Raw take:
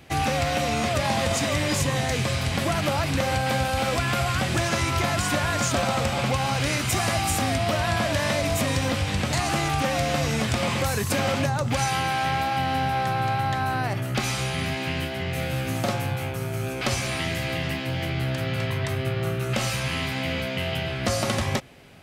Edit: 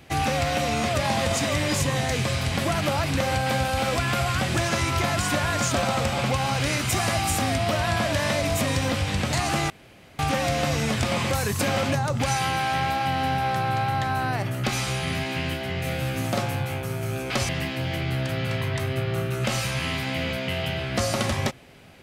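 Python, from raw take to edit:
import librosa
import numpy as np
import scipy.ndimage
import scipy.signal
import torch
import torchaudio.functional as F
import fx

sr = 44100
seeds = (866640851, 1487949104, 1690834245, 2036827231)

y = fx.edit(x, sr, fx.insert_room_tone(at_s=9.7, length_s=0.49),
    fx.cut(start_s=17.0, length_s=0.58), tone=tone)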